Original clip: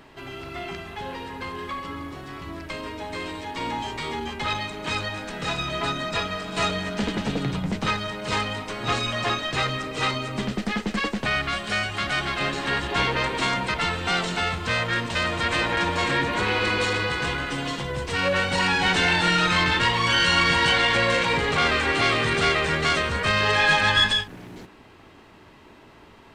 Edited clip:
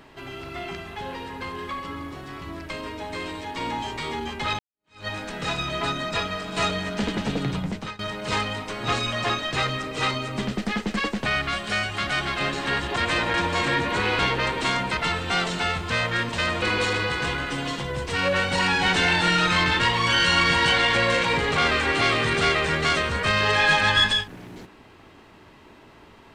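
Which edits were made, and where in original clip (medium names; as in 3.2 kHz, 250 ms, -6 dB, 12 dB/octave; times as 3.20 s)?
4.59–5.07 s: fade in exponential
7.60–7.99 s: fade out, to -22.5 dB
15.39–16.62 s: move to 12.96 s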